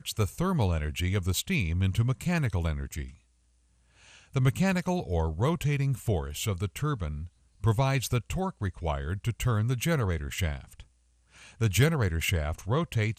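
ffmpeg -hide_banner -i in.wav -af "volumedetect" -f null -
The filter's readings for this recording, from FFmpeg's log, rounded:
mean_volume: -28.8 dB
max_volume: -9.3 dB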